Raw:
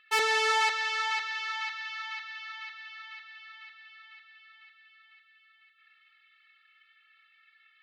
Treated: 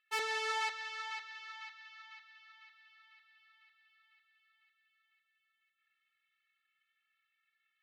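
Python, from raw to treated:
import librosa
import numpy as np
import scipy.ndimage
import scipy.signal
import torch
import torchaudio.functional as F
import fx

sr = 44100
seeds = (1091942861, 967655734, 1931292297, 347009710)

y = fx.upward_expand(x, sr, threshold_db=-42.0, expansion=1.5)
y = y * 10.0 ** (-9.0 / 20.0)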